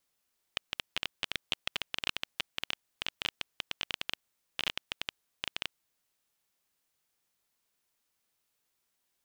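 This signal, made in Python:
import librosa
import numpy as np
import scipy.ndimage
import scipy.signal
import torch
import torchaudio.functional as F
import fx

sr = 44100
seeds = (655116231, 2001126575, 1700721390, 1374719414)

y = fx.geiger_clicks(sr, seeds[0], length_s=5.34, per_s=13.0, level_db=-13.5)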